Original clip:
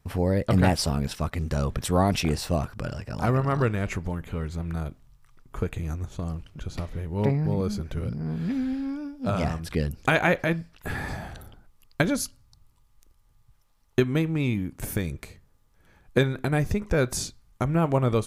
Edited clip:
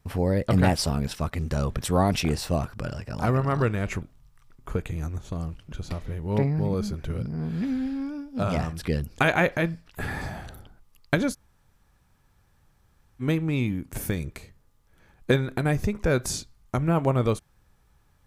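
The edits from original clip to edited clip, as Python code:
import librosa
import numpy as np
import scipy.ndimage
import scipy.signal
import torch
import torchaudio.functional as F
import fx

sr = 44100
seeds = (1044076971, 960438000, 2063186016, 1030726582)

y = fx.edit(x, sr, fx.cut(start_s=4.02, length_s=0.87),
    fx.room_tone_fill(start_s=12.2, length_s=1.88, crossfade_s=0.04), tone=tone)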